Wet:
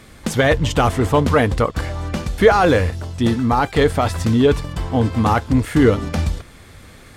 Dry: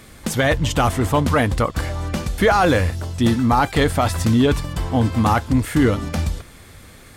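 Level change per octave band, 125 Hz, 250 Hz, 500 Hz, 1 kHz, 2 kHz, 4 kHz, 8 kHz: +0.5 dB, +1.0 dB, +4.0 dB, +0.5 dB, +0.5 dB, 0.0 dB, -2.5 dB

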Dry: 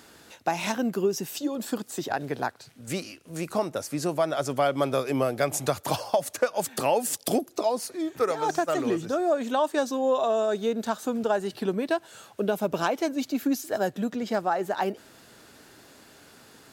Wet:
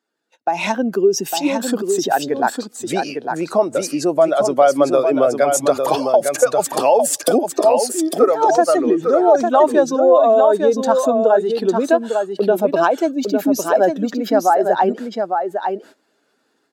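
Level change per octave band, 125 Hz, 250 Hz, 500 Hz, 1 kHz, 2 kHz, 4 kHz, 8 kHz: +2.0 dB, +9.0 dB, +12.5 dB, +11.5 dB, +7.5 dB, +7.0 dB, +10.0 dB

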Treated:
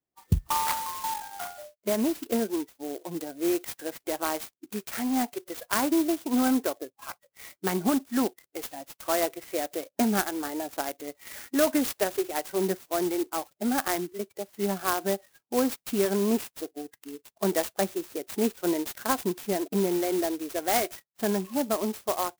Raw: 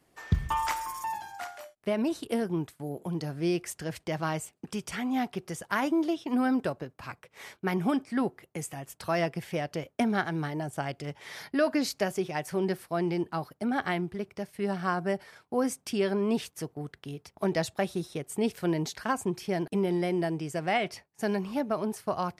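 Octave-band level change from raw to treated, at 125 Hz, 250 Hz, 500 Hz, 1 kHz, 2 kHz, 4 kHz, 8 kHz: -3.0 dB, +1.5 dB, +2.0 dB, +1.5 dB, -0.5 dB, +3.5 dB, +8.0 dB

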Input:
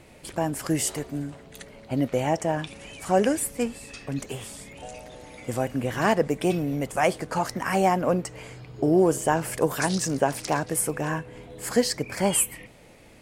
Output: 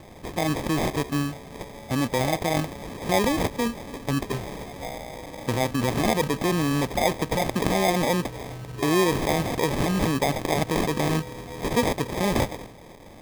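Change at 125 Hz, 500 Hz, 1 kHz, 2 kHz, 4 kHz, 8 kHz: +3.5 dB, -0.5 dB, +0.5 dB, +2.0 dB, +4.5 dB, -4.5 dB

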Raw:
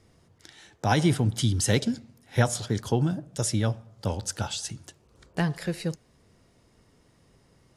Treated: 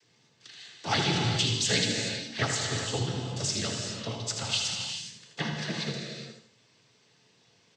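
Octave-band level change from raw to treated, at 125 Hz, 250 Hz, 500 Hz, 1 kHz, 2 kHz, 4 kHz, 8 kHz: -6.5 dB, -6.5 dB, -4.5 dB, -3.0 dB, +2.0 dB, +7.0 dB, +1.0 dB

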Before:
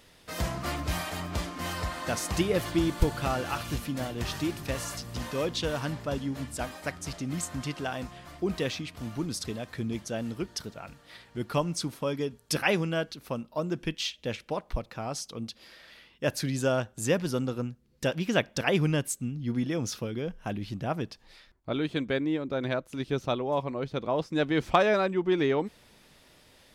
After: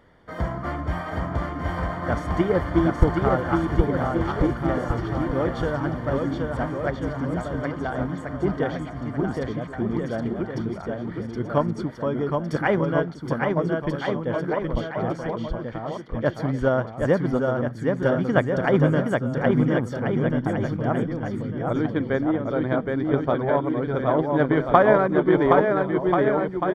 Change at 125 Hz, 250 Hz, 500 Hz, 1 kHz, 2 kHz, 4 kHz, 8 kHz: +8.0 dB, +8.0 dB, +8.0 dB, +8.5 dB, +5.0 dB, -7.0 dB, under -15 dB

